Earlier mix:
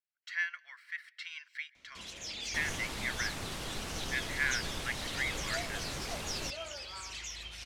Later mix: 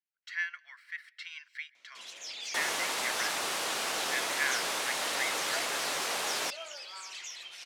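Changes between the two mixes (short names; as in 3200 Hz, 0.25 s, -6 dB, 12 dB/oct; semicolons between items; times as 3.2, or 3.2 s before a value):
second sound +10.5 dB; master: add HPF 550 Hz 12 dB/oct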